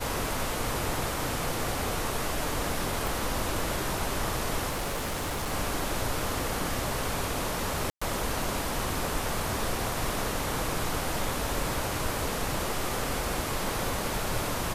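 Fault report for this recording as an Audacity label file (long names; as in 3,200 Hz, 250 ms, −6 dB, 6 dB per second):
3.070000	3.070000	click
4.690000	5.530000	clipping −27.5 dBFS
7.900000	8.020000	drop-out 115 ms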